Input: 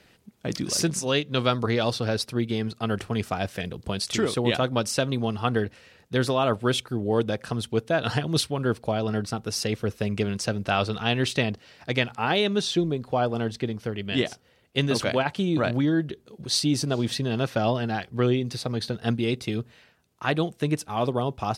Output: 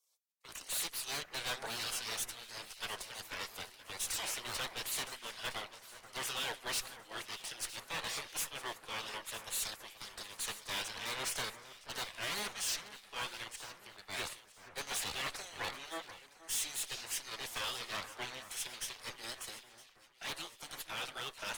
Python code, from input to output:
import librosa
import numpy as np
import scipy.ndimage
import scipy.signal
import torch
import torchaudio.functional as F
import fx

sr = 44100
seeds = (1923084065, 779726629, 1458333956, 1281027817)

p1 = scipy.signal.sosfilt(scipy.signal.butter(4, 850.0, 'highpass', fs=sr, output='sos'), x)
p2 = 10.0 ** (-25.0 / 20.0) * (np.abs((p1 / 10.0 ** (-25.0 / 20.0) + 3.0) % 4.0 - 2.0) - 1.0)
p3 = p1 + (p2 * 10.0 ** (-8.5 / 20.0))
p4 = fx.spec_gate(p3, sr, threshold_db=-15, keep='weak')
p5 = fx.tube_stage(p4, sr, drive_db=43.0, bias=0.55)
p6 = p5 + fx.echo_alternate(p5, sr, ms=482, hz=2100.0, feedback_pct=73, wet_db=-9.0, dry=0)
p7 = fx.band_widen(p6, sr, depth_pct=70)
y = p7 * 10.0 ** (7.5 / 20.0)